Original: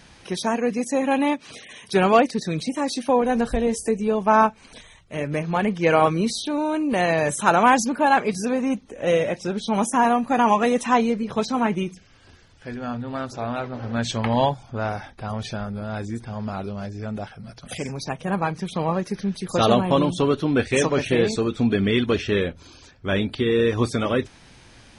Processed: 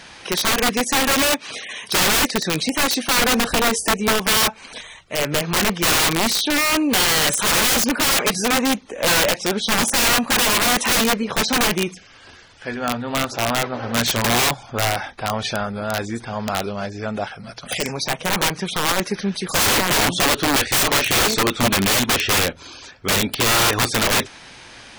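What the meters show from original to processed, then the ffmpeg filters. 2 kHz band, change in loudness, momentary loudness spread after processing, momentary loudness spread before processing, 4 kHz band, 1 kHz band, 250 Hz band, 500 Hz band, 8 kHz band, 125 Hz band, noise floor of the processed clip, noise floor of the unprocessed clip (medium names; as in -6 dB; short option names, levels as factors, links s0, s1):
+8.5 dB, +4.5 dB, 11 LU, 13 LU, +14.0 dB, 0.0 dB, -1.0 dB, -2.0 dB, +15.0 dB, -0.5 dB, -43 dBFS, -51 dBFS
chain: -filter_complex "[0:a]asplit=2[s0][s1];[s1]highpass=f=720:p=1,volume=4.47,asoftclip=type=tanh:threshold=0.668[s2];[s0][s2]amix=inputs=2:normalize=0,lowpass=f=6300:p=1,volume=0.501,aeval=exprs='(mod(5.62*val(0)+1,2)-1)/5.62':c=same,volume=1.41"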